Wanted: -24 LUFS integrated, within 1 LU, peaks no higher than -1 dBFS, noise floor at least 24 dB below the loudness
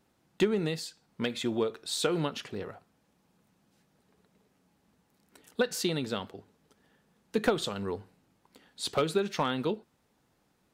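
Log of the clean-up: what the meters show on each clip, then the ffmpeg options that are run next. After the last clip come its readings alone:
loudness -32.0 LUFS; peak -16.5 dBFS; loudness target -24.0 LUFS
-> -af "volume=8dB"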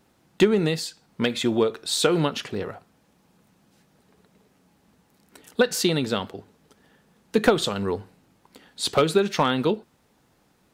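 loudness -24.0 LUFS; peak -8.5 dBFS; noise floor -64 dBFS

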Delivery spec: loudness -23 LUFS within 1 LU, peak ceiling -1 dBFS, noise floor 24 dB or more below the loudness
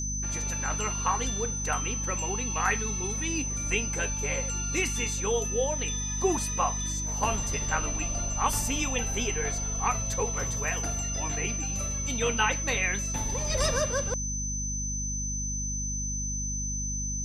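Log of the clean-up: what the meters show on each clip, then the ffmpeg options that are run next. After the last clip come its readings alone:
hum 50 Hz; harmonics up to 250 Hz; hum level -32 dBFS; steady tone 6100 Hz; tone level -32 dBFS; loudness -28.5 LUFS; peak -12.0 dBFS; loudness target -23.0 LUFS
-> -af "bandreject=f=50:t=h:w=4,bandreject=f=100:t=h:w=4,bandreject=f=150:t=h:w=4,bandreject=f=200:t=h:w=4,bandreject=f=250:t=h:w=4"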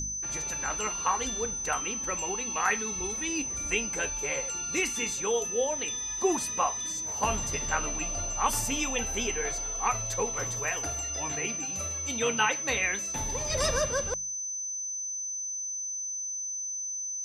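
hum none; steady tone 6100 Hz; tone level -32 dBFS
-> -af "bandreject=f=6.1k:w=30"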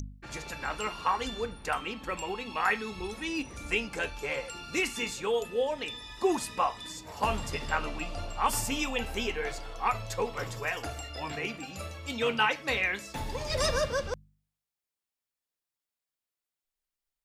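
steady tone none; loudness -32.0 LUFS; peak -13.0 dBFS; loudness target -23.0 LUFS
-> -af "volume=9dB"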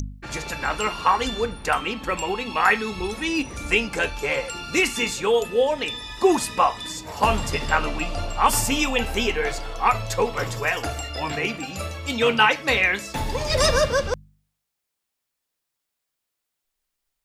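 loudness -23.0 LUFS; peak -4.0 dBFS; noise floor -81 dBFS

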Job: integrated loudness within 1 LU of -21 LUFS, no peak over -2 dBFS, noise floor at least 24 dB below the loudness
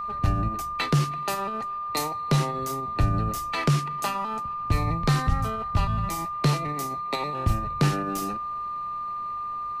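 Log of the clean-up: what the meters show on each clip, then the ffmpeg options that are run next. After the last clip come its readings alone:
steady tone 1200 Hz; tone level -29 dBFS; loudness -27.0 LUFS; peak -11.5 dBFS; loudness target -21.0 LUFS
-> -af "bandreject=f=1.2k:w=30"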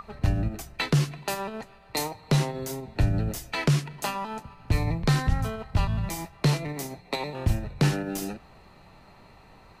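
steady tone none; loudness -28.5 LUFS; peak -12.5 dBFS; loudness target -21.0 LUFS
-> -af "volume=7.5dB"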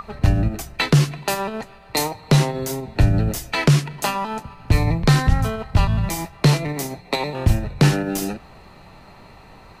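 loudness -21.0 LUFS; peak -5.0 dBFS; noise floor -46 dBFS

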